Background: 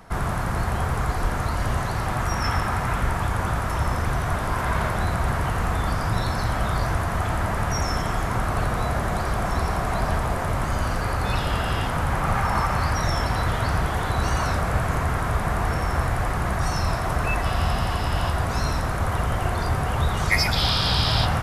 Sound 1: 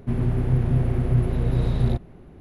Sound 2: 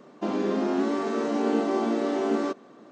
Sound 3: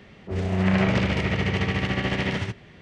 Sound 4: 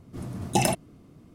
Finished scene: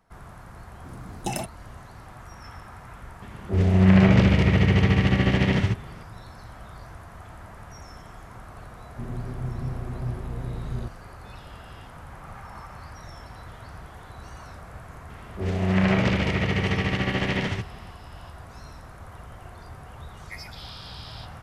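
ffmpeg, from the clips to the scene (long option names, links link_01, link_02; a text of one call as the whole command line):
ffmpeg -i bed.wav -i cue0.wav -i cue1.wav -i cue2.wav -i cue3.wav -filter_complex "[3:a]asplit=2[link_01][link_02];[0:a]volume=-19dB[link_03];[link_01]lowshelf=frequency=280:gain=8.5[link_04];[4:a]atrim=end=1.34,asetpts=PTS-STARTPTS,volume=-7dB,afade=type=in:duration=0.004:curve=hsin,afade=type=out:start_time=1.336:duration=0.004:curve=hsin,adelay=710[link_05];[link_04]atrim=end=2.81,asetpts=PTS-STARTPTS,afade=type=in:duration=0.004:curve=hsin,afade=type=out:start_time=2.806:duration=0.004:curve=hsin,adelay=3220[link_06];[1:a]atrim=end=2.4,asetpts=PTS-STARTPTS,volume=-10.5dB,afade=type=in:duration=0.004:curve=hsin,afade=type=out:start_time=2.396:duration=0.004:curve=hsin,adelay=8910[link_07];[link_02]atrim=end=2.81,asetpts=PTS-STARTPTS,afade=type=in:duration=0.004:curve=hsin,afade=type=out:start_time=2.806:duration=0.004:curve=hsin,adelay=15100[link_08];[link_03][link_05][link_06][link_07][link_08]amix=inputs=5:normalize=0" out.wav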